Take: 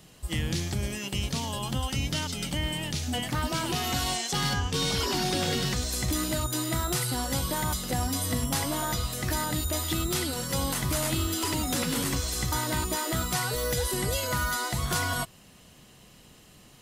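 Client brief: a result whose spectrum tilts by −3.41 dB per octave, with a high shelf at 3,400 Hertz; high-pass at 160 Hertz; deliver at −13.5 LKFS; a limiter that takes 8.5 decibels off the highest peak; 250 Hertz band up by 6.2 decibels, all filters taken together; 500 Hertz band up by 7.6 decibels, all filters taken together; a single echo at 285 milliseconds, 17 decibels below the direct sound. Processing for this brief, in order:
high-pass filter 160 Hz
parametric band 250 Hz +6.5 dB
parametric band 500 Hz +7.5 dB
high-shelf EQ 3,400 Hz +4 dB
brickwall limiter −19.5 dBFS
single-tap delay 285 ms −17 dB
level +15 dB

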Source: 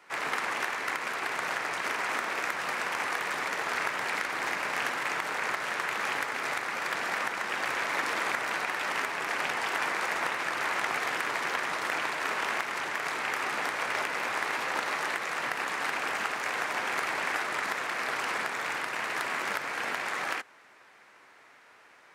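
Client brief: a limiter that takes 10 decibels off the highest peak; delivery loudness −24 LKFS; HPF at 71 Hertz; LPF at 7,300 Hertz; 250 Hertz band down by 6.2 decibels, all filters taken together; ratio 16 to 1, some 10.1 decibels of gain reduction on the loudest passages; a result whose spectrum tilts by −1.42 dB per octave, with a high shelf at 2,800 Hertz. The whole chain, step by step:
high-pass filter 71 Hz
low-pass filter 7,300 Hz
parametric band 250 Hz −9 dB
high-shelf EQ 2,800 Hz −5.5 dB
downward compressor 16 to 1, threshold −38 dBFS
level +21 dB
brickwall limiter −15.5 dBFS

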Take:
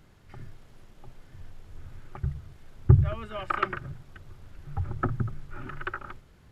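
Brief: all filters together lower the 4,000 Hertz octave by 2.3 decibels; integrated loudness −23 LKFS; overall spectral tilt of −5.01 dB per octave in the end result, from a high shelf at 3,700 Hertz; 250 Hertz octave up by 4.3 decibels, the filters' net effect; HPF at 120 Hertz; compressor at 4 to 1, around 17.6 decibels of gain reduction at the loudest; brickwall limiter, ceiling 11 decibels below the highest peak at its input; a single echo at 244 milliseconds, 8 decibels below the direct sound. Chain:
high-pass filter 120 Hz
parametric band 250 Hz +8.5 dB
high-shelf EQ 3,700 Hz +8 dB
parametric band 4,000 Hz −9 dB
downward compressor 4 to 1, threshold −35 dBFS
brickwall limiter −32 dBFS
single-tap delay 244 ms −8 dB
level +22.5 dB

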